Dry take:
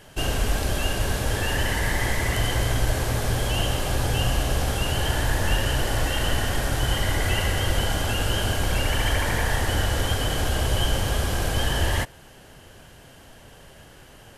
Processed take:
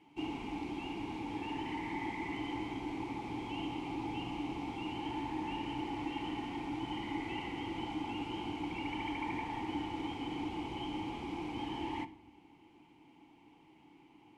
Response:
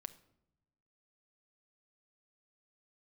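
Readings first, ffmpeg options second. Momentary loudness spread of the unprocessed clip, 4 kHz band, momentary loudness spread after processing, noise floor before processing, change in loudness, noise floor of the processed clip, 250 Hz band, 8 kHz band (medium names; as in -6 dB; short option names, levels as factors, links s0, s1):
2 LU, -19.0 dB, 2 LU, -48 dBFS, -15.0 dB, -62 dBFS, -4.5 dB, under -30 dB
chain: -filter_complex "[0:a]acrossover=split=9700[s0][s1];[s1]acompressor=threshold=0.00398:ratio=4:attack=1:release=60[s2];[s0][s2]amix=inputs=2:normalize=0,asplit=3[s3][s4][s5];[s3]bandpass=f=300:t=q:w=8,volume=1[s6];[s4]bandpass=f=870:t=q:w=8,volume=0.501[s7];[s5]bandpass=f=2240:t=q:w=8,volume=0.355[s8];[s6][s7][s8]amix=inputs=3:normalize=0[s9];[1:a]atrim=start_sample=2205[s10];[s9][s10]afir=irnorm=-1:irlink=0,volume=2"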